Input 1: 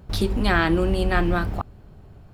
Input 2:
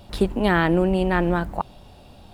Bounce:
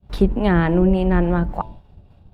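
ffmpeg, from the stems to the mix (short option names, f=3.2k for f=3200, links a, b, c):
-filter_complex "[0:a]acompressor=threshold=-38dB:ratio=2,volume=-0.5dB[a];[1:a]bass=f=250:g=-2,treble=f=4k:g=-13,bandreject=f=109.5:t=h:w=4,bandreject=f=219:t=h:w=4,bandreject=f=328.5:t=h:w=4,bandreject=f=438:t=h:w=4,bandreject=f=547.5:t=h:w=4,bandreject=f=657:t=h:w=4,bandreject=f=766.5:t=h:w=4,bandreject=f=876:t=h:w=4,bandreject=f=985.5:t=h:w=4,volume=1.5dB,asplit=2[b][c];[c]apad=whole_len=103106[d];[a][d]sidechaincompress=threshold=-27dB:ratio=8:attack=16:release=290[e];[e][b]amix=inputs=2:normalize=0,agate=range=-33dB:threshold=-34dB:ratio=3:detection=peak,lowshelf=f=230:g=12,acrossover=split=510[f][g];[f]aeval=exprs='val(0)*(1-0.5/2+0.5/2*cos(2*PI*3.5*n/s))':c=same[h];[g]aeval=exprs='val(0)*(1-0.5/2-0.5/2*cos(2*PI*3.5*n/s))':c=same[i];[h][i]amix=inputs=2:normalize=0"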